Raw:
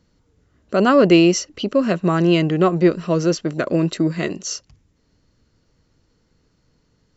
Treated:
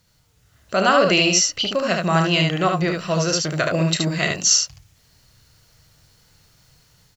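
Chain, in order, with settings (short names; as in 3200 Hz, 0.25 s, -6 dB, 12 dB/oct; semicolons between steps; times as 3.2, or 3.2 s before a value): in parallel at 0 dB: compressor, threshold -22 dBFS, peak gain reduction 13 dB; on the sum: bit-crush 11-bit; ten-band EQ 125 Hz +7 dB, 250 Hz -7 dB, 1000 Hz -9 dB, 2000 Hz -3 dB; AGC gain up to 6 dB; resonant low shelf 590 Hz -10.5 dB, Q 1.5; on a send: early reflections 32 ms -9.5 dB, 74 ms -3.5 dB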